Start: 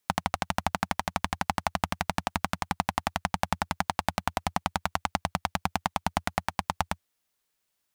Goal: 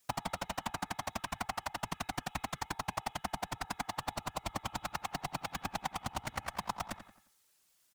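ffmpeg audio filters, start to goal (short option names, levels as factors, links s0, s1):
-filter_complex "[0:a]equalizer=f=8200:t=o:w=2.1:g=6,bandreject=f=423:t=h:w=4,bandreject=f=846:t=h:w=4,bandreject=f=1269:t=h:w=4,bandreject=f=1692:t=h:w=4,bandreject=f=2115:t=h:w=4,bandreject=f=2538:t=h:w=4,bandreject=f=2961:t=h:w=4,bandreject=f=3384:t=h:w=4,bandreject=f=3807:t=h:w=4,acompressor=threshold=0.0178:ratio=6,asoftclip=type=tanh:threshold=0.158,afftfilt=real='hypot(re,im)*cos(2*PI*random(0))':imag='hypot(re,im)*sin(2*PI*random(1))':win_size=512:overlap=0.75,asplit=2[s0][s1];[s1]adelay=88,lowpass=f=3300:p=1,volume=0.299,asplit=2[s2][s3];[s3]adelay=88,lowpass=f=3300:p=1,volume=0.4,asplit=2[s4][s5];[s5]adelay=88,lowpass=f=3300:p=1,volume=0.4,asplit=2[s6][s7];[s7]adelay=88,lowpass=f=3300:p=1,volume=0.4[s8];[s0][s2][s4][s6][s8]amix=inputs=5:normalize=0,volume=2.99"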